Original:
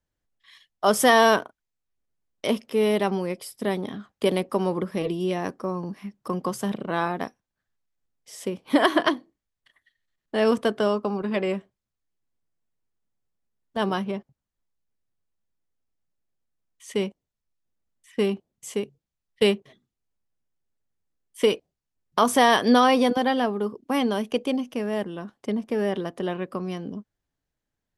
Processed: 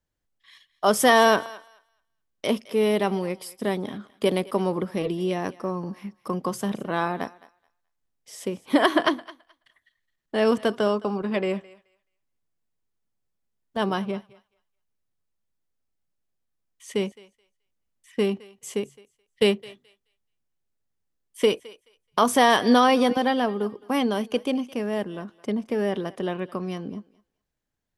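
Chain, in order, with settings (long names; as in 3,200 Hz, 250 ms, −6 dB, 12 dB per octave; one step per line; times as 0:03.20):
feedback echo with a high-pass in the loop 214 ms, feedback 19%, high-pass 690 Hz, level −18.5 dB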